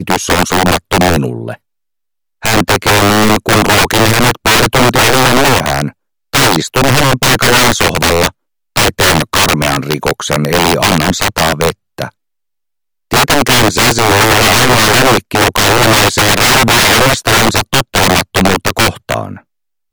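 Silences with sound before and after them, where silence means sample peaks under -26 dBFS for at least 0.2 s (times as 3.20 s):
1.55–2.43 s
5.91–6.34 s
8.29–8.76 s
11.72–11.98 s
12.09–13.11 s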